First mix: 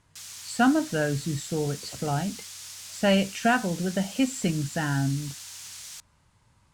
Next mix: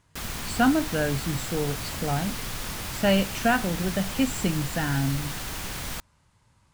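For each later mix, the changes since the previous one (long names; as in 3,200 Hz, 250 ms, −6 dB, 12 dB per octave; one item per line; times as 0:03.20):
background: remove resonant band-pass 6,600 Hz, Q 1.3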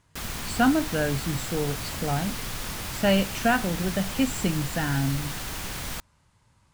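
nothing changed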